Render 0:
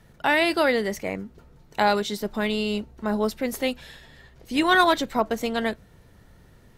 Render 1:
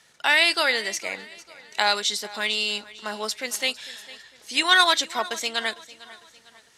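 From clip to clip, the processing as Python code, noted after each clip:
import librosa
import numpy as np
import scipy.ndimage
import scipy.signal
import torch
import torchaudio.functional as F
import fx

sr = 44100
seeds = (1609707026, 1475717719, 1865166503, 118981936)

y = fx.weighting(x, sr, curve='ITU-R 468')
y = fx.echo_feedback(y, sr, ms=452, feedback_pct=42, wet_db=-19)
y = F.gain(torch.from_numpy(y), -1.5).numpy()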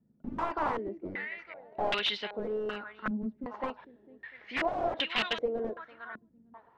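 y = fx.air_absorb(x, sr, metres=200.0)
y = (np.mod(10.0 ** (21.5 / 20.0) * y + 1.0, 2.0) - 1.0) / 10.0 ** (21.5 / 20.0)
y = fx.filter_held_lowpass(y, sr, hz=2.6, low_hz=230.0, high_hz=2900.0)
y = F.gain(torch.from_numpy(y), -2.5).numpy()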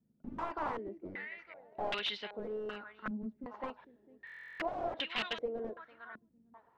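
y = fx.buffer_glitch(x, sr, at_s=(4.25,), block=1024, repeats=14)
y = F.gain(torch.from_numpy(y), -6.0).numpy()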